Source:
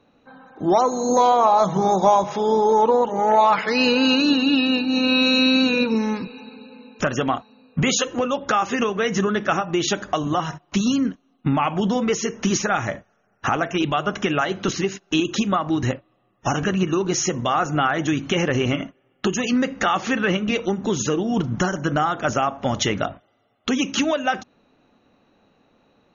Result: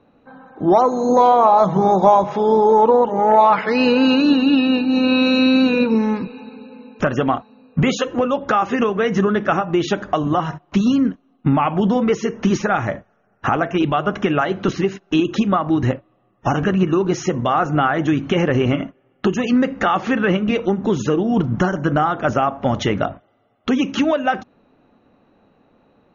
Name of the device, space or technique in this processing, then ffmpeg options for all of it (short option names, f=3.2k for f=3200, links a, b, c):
through cloth: -af "lowpass=6.3k,highshelf=f=2.9k:g=-13,volume=4.5dB"